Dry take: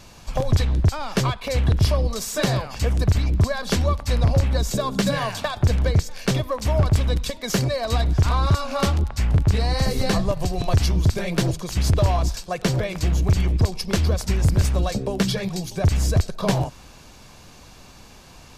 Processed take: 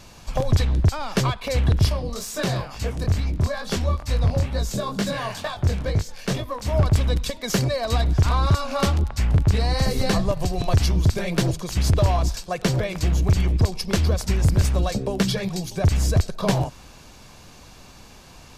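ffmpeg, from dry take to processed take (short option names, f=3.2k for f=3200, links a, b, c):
-filter_complex "[0:a]asettb=1/sr,asplit=3[a][b][c];[a]atrim=end=1.894[d];[b]atrim=start=1.89:end=6.73,asetpts=PTS-STARTPTS,afade=t=in:d=0.004:c=qsin,afade=t=out:st=4.836:d=0.004:c=qsin,flanger=delay=18.5:depth=6.9:speed=2.2[e];[c]atrim=start=6.726[f];[d][e]acrossfade=d=0.004:c1=hsin:c2=qsin[g];[g][f]acrossfade=d=0.004:c1=qsin:c2=hsin"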